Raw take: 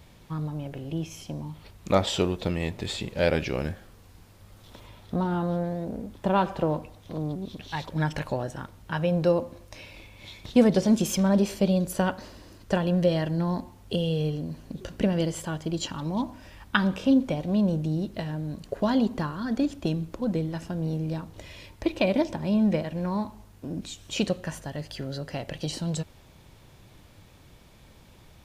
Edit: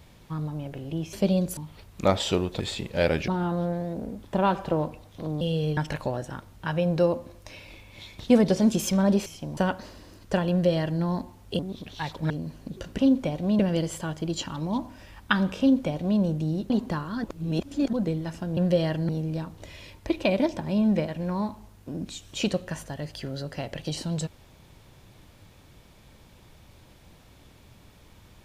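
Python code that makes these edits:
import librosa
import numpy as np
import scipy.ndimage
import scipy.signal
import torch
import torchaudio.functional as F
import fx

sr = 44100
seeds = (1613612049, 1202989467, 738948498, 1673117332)

y = fx.edit(x, sr, fx.swap(start_s=1.13, length_s=0.31, other_s=11.52, other_length_s=0.44),
    fx.cut(start_s=2.47, length_s=0.35),
    fx.cut(start_s=3.5, length_s=1.69),
    fx.swap(start_s=7.32, length_s=0.71, other_s=13.98, other_length_s=0.36),
    fx.duplicate(start_s=12.89, length_s=0.52, to_s=20.85),
    fx.duplicate(start_s=17.04, length_s=0.6, to_s=15.03),
    fx.cut(start_s=18.14, length_s=0.84),
    fx.reverse_span(start_s=19.52, length_s=0.69), tone=tone)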